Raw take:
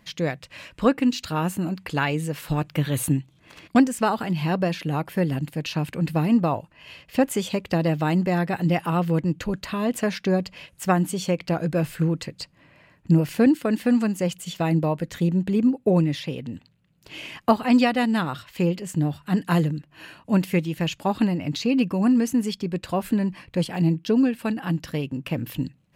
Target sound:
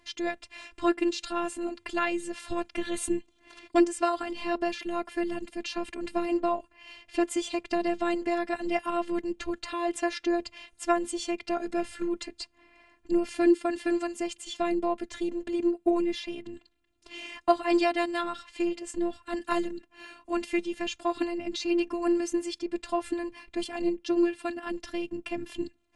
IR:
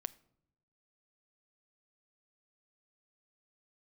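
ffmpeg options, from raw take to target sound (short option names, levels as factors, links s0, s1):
-af "afftfilt=real='hypot(re,im)*cos(PI*b)':imag='0':win_size=512:overlap=0.75" -ar 22050 -c:a aac -b:a 96k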